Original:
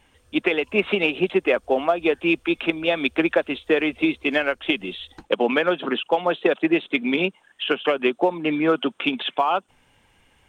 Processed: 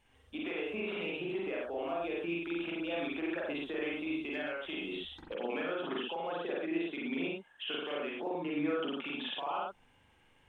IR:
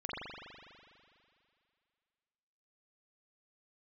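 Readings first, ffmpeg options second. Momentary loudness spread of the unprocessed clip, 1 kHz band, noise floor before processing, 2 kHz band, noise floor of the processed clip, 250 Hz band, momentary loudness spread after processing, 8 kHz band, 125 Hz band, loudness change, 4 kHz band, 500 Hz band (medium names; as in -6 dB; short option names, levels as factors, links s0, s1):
5 LU, -14.5 dB, -61 dBFS, -15.0 dB, -66 dBFS, -13.5 dB, 4 LU, no reading, -13.5 dB, -14.5 dB, -13.0 dB, -15.0 dB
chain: -filter_complex "[0:a]alimiter=limit=0.112:level=0:latency=1:release=174[s0];[1:a]atrim=start_sample=2205,afade=t=out:st=0.18:d=0.01,atrim=end_sample=8379[s1];[s0][s1]afir=irnorm=-1:irlink=0,volume=0.398"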